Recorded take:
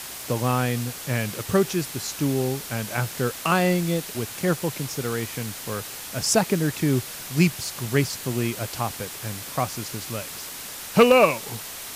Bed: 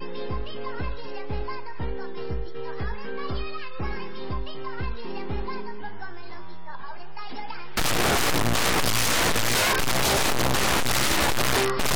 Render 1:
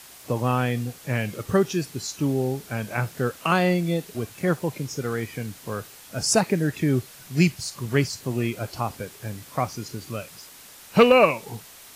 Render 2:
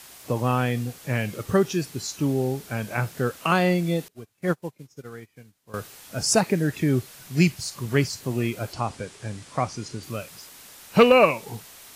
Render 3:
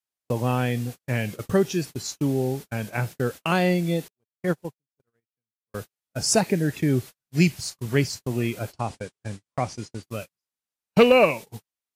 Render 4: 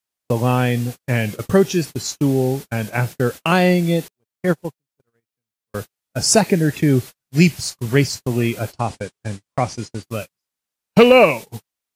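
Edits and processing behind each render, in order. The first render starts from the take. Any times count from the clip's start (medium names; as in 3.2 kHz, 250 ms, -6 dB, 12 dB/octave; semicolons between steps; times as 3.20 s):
noise print and reduce 10 dB
4.08–5.74 s: upward expansion 2.5:1, over -37 dBFS; 8.73–10.03 s: steep low-pass 9.6 kHz
dynamic bell 1.2 kHz, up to -6 dB, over -42 dBFS, Q 2.7; gate -33 dBFS, range -47 dB
trim +6.5 dB; peak limiter -2 dBFS, peak gain reduction 2 dB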